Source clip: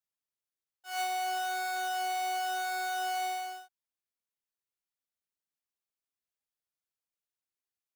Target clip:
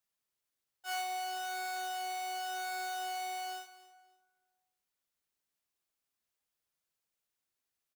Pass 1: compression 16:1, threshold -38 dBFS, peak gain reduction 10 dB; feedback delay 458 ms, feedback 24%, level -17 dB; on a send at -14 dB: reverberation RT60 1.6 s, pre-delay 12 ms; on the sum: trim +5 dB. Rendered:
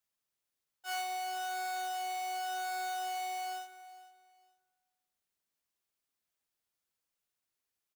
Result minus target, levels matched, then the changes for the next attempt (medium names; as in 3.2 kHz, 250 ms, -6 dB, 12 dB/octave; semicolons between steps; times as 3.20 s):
echo 183 ms late
change: feedback delay 275 ms, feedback 24%, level -17 dB